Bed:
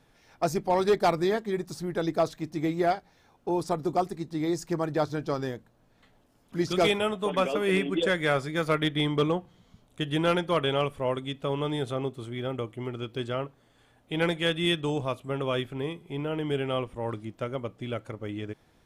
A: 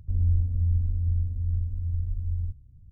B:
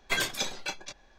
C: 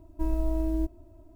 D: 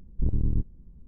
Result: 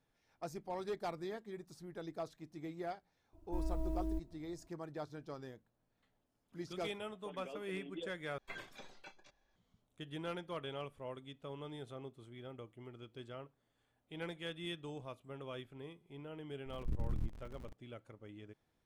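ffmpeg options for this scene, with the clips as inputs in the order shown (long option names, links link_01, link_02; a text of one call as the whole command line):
ffmpeg -i bed.wav -i cue0.wav -i cue1.wav -i cue2.wav -i cue3.wav -filter_complex "[0:a]volume=-17.5dB[link_01];[2:a]acrossover=split=2800[link_02][link_03];[link_03]acompressor=threshold=-47dB:ratio=4:attack=1:release=60[link_04];[link_02][link_04]amix=inputs=2:normalize=0[link_05];[4:a]aeval=exprs='val(0)+0.5*0.0224*sgn(val(0))':channel_layout=same[link_06];[link_01]asplit=2[link_07][link_08];[link_07]atrim=end=8.384[link_09];[link_05]atrim=end=1.18,asetpts=PTS-STARTPTS,volume=-17.5dB[link_10];[link_08]atrim=start=9.556[link_11];[3:a]atrim=end=1.35,asetpts=PTS-STARTPTS,volume=-10.5dB,afade=type=in:duration=0.004:curve=hsin,afade=type=out:start_time=1.346:duration=0.004:curve=hsin,adelay=146853S[link_12];[link_06]atrim=end=1.07,asetpts=PTS-STARTPTS,volume=-13.5dB,afade=type=in:duration=0.004:curve=hsin,afade=type=out:start_time=1.066:duration=0.004:curve=hsin,adelay=16660[link_13];[link_09][link_10]acrossfade=duration=0.004:curve1=hsin:curve2=hsin[link_14];[link_14][link_11]acrossfade=duration=0.004:curve1=hsin:curve2=hsin[link_15];[link_15][link_12][link_13]amix=inputs=3:normalize=0" out.wav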